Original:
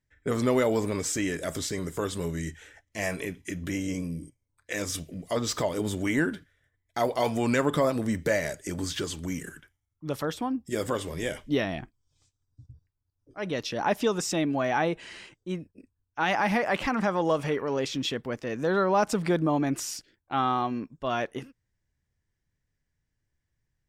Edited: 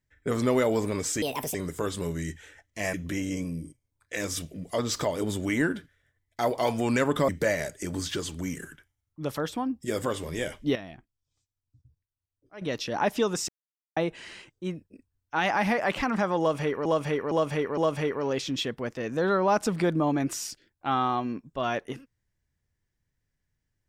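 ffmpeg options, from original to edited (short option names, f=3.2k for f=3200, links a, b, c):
-filter_complex "[0:a]asplit=12[a][b][c][d][e][f][g][h][i][j][k][l];[a]atrim=end=1.224[m];[b]atrim=start=1.22:end=1.73,asetpts=PTS-STARTPTS,asetrate=69237,aresample=44100,atrim=end_sample=14325,asetpts=PTS-STARTPTS[n];[c]atrim=start=1.726:end=3.122[o];[d]atrim=start=3.508:end=7.862[p];[e]atrim=start=8.128:end=11.602[q];[f]atrim=start=11.598:end=13.462,asetpts=PTS-STARTPTS,volume=-10.5dB[r];[g]atrim=start=13.458:end=14.33,asetpts=PTS-STARTPTS,afade=t=out:st=0.868:d=0.004:c=hsin[s];[h]atrim=start=14.33:end=14.81,asetpts=PTS-STARTPTS,volume=0[t];[i]atrim=start=14.81:end=17.702,asetpts=PTS-STARTPTS,afade=t=in:d=0.004:c=hsin[u];[j]atrim=start=17.238:end=17.702[v];[k]atrim=start=17.238:end=17.702[w];[l]atrim=start=17.238[x];[m][n]acrossfade=d=0.004:c1=hsin:c2=hsin[y];[y][o]acrossfade=d=0.004:c1=hsin:c2=hsin[z];[z][p]acrossfade=d=0.004:c1=hsin:c2=hsin[aa];[aa][q]acrossfade=d=0.004:c1=hsin:c2=hsin[ab];[ab][r]acrossfade=d=0.004:c1=hsin:c2=hsin[ac];[s][t][u]concat=n=3:v=0:a=1[ad];[ac][ad]acrossfade=d=0.004:c1=hsin:c2=hsin[ae];[ae][v]acrossfade=d=0.004:c1=hsin:c2=hsin[af];[af][w]acrossfade=d=0.004:c1=hsin:c2=hsin[ag];[ag][x]acrossfade=d=0.004:c1=hsin:c2=hsin"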